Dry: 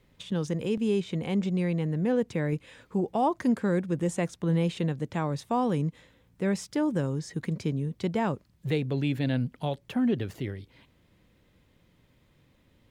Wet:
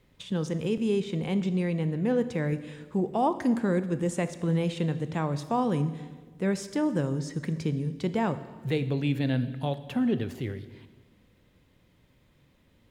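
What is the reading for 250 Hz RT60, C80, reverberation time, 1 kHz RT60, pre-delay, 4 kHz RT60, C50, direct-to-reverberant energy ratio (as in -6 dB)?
1.6 s, 15.0 dB, 1.4 s, 1.3 s, 16 ms, 1.2 s, 13.5 dB, 11.5 dB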